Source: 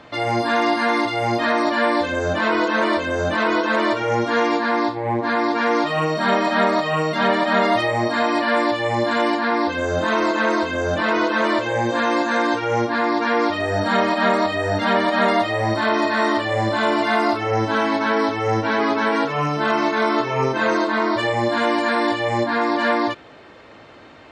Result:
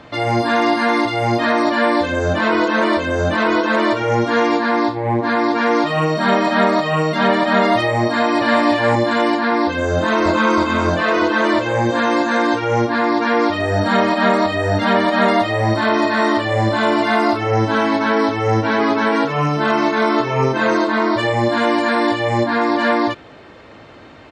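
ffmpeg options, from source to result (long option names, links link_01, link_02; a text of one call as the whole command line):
ffmpeg -i in.wav -filter_complex "[0:a]asplit=2[link_01][link_02];[link_02]afade=type=in:start_time=8.06:duration=0.01,afade=type=out:start_time=8.6:duration=0.01,aecho=0:1:350|700:0.707946|0.0707946[link_03];[link_01][link_03]amix=inputs=2:normalize=0,asplit=2[link_04][link_05];[link_05]afade=type=in:start_time=9.93:duration=0.01,afade=type=out:start_time=10.57:duration=0.01,aecho=0:1:320|640|960|1280|1600|1920|2240|2560|2880:0.595662|0.357397|0.214438|0.128663|0.0771978|0.0463187|0.0277912|0.0166747|0.0100048[link_06];[link_04][link_06]amix=inputs=2:normalize=0,lowshelf=frequency=240:gain=5.5,volume=2dB" out.wav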